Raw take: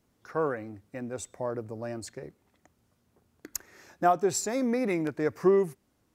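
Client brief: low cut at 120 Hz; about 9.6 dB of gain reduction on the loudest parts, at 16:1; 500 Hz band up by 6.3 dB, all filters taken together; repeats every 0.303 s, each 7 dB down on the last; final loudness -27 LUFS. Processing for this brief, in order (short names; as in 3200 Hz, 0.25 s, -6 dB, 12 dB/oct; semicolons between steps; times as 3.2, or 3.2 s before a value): HPF 120 Hz; bell 500 Hz +8.5 dB; compressor 16:1, threshold -22 dBFS; feedback echo 0.303 s, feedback 45%, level -7 dB; gain +2.5 dB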